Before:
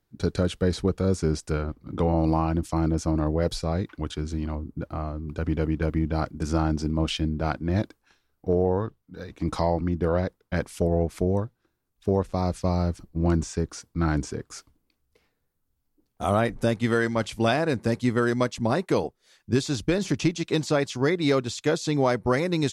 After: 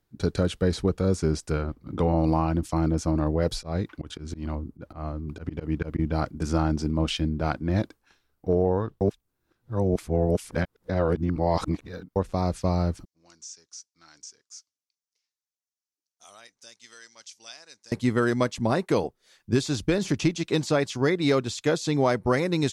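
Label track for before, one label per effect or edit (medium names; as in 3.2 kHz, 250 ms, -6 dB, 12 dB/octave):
3.510000	5.990000	slow attack 132 ms
9.010000	12.160000	reverse
13.050000	17.920000	band-pass filter 5.9 kHz, Q 3.4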